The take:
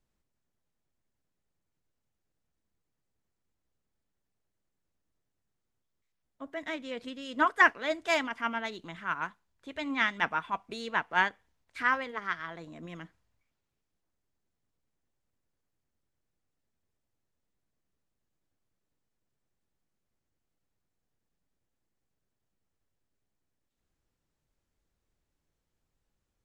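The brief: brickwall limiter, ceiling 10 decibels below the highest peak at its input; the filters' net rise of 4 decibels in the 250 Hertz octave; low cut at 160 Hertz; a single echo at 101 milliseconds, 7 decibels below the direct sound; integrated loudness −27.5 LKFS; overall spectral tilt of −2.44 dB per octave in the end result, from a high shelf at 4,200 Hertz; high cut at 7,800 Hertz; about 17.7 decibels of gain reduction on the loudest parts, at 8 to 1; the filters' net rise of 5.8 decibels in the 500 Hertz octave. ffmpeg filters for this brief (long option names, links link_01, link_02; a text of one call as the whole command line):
ffmpeg -i in.wav -af "highpass=160,lowpass=7800,equalizer=frequency=250:width_type=o:gain=3,equalizer=frequency=500:width_type=o:gain=7.5,highshelf=frequency=4200:gain=3,acompressor=threshold=-33dB:ratio=8,alimiter=level_in=5dB:limit=-24dB:level=0:latency=1,volume=-5dB,aecho=1:1:101:0.447,volume=13dB" out.wav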